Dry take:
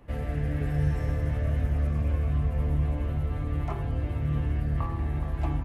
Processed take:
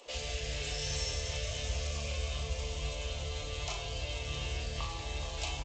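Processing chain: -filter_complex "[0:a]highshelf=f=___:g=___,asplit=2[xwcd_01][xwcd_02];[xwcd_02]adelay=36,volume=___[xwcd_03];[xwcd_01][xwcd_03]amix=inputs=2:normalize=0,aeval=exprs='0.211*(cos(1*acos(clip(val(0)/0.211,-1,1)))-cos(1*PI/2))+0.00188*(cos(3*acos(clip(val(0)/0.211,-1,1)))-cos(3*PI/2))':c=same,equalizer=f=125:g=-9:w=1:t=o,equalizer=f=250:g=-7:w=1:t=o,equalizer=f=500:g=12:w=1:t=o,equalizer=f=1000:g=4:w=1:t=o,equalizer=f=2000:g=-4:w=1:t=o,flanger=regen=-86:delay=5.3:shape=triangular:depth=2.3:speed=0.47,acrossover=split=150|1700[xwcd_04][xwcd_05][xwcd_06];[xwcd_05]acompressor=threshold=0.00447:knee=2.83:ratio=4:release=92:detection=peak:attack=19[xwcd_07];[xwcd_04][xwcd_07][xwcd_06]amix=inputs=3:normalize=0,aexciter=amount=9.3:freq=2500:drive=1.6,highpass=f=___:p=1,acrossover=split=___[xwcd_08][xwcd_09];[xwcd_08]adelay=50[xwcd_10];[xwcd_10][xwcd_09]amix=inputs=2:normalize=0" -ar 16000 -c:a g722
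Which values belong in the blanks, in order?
2400, 11, 0.501, 44, 230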